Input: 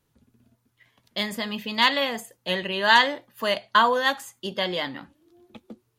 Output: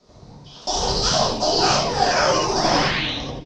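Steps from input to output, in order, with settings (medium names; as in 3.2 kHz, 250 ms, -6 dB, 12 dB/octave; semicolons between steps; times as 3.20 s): companding laws mixed up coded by mu; high-order bell 1.4 kHz -12.5 dB 1.2 oct; compression 6:1, threshold -33 dBFS, peak gain reduction 15.5 dB; painted sound rise, 4.55–5.38 s, 490–2600 Hz -42 dBFS; ever faster or slower copies 119 ms, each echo +1 st, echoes 3; mistuned SSB -190 Hz 260–3500 Hz; frequency-shifting echo 136 ms, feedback 42%, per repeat -120 Hz, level -7.5 dB; gated-style reverb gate 190 ms flat, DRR -6 dB; speed mistake 45 rpm record played at 78 rpm; trim +8.5 dB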